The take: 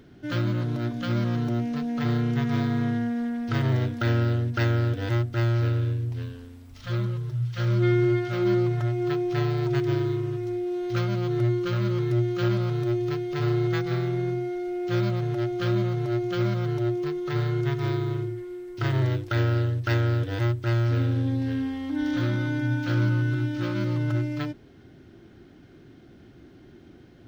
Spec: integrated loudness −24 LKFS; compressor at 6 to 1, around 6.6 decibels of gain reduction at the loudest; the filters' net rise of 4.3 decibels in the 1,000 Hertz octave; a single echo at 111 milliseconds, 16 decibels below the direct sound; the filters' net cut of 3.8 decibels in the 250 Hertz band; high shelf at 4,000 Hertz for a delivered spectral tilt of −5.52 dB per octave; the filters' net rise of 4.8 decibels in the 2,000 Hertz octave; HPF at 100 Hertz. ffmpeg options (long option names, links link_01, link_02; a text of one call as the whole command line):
ffmpeg -i in.wav -af "highpass=100,equalizer=frequency=250:width_type=o:gain=-6.5,equalizer=frequency=1000:width_type=o:gain=5,equalizer=frequency=2000:width_type=o:gain=3.5,highshelf=frequency=4000:gain=4.5,acompressor=threshold=-27dB:ratio=6,aecho=1:1:111:0.158,volume=8dB" out.wav